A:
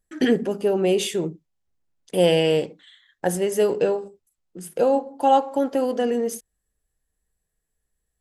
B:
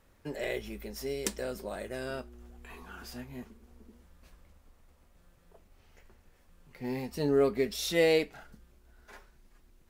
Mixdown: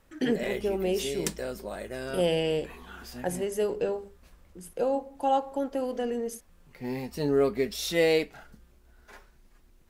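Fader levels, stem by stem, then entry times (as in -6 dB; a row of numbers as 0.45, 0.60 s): -8.0, +1.5 dB; 0.00, 0.00 s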